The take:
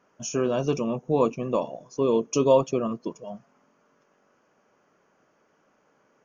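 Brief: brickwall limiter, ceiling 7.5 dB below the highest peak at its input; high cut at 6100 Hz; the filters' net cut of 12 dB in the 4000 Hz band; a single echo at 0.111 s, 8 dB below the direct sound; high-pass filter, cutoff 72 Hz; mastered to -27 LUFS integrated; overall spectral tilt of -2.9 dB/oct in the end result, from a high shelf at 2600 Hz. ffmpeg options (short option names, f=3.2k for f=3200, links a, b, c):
-af "highpass=72,lowpass=6.1k,highshelf=f=2.6k:g=-8.5,equalizer=f=4k:t=o:g=-9,alimiter=limit=-16.5dB:level=0:latency=1,aecho=1:1:111:0.398,volume=1dB"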